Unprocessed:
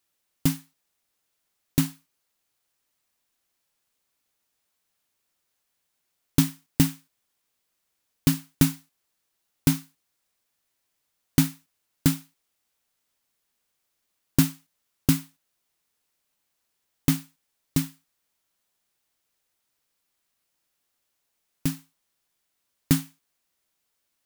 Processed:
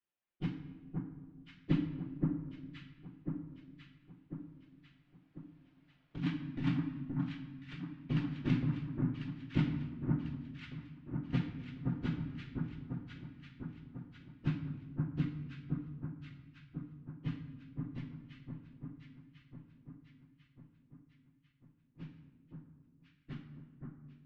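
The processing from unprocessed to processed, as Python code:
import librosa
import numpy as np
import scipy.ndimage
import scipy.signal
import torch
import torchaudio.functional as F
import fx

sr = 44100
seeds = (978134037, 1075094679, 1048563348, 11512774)

p1 = fx.phase_scramble(x, sr, seeds[0], window_ms=50)
p2 = fx.doppler_pass(p1, sr, speed_mps=13, closest_m=10.0, pass_at_s=5.89)
p3 = fx.over_compress(p2, sr, threshold_db=-31.0, ratio=-1.0)
p4 = scipy.signal.sosfilt(scipy.signal.butter(4, 3000.0, 'lowpass', fs=sr, output='sos'), p3)
p5 = p4 + fx.echo_alternate(p4, sr, ms=523, hz=1400.0, feedback_pct=72, wet_db=-2.5, dry=0)
y = fx.room_shoebox(p5, sr, seeds[1], volume_m3=1100.0, walls='mixed', distance_m=0.9)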